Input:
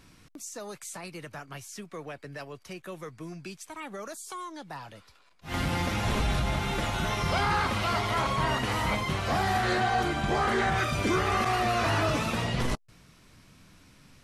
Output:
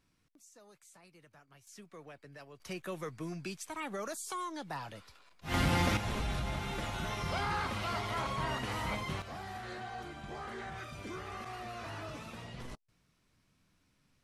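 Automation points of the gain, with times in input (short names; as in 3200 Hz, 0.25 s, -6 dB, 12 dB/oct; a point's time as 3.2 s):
-19 dB
from 1.67 s -11 dB
from 2.6 s 0 dB
from 5.97 s -8 dB
from 9.22 s -17 dB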